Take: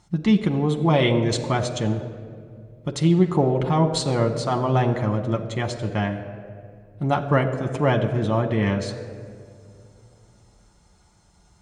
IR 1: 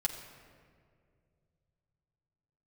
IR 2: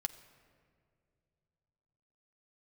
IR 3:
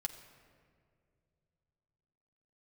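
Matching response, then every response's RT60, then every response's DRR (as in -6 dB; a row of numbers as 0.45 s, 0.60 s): 3; 2.2 s, 2.3 s, 2.3 s; -1.0 dB, 7.5 dB, 3.0 dB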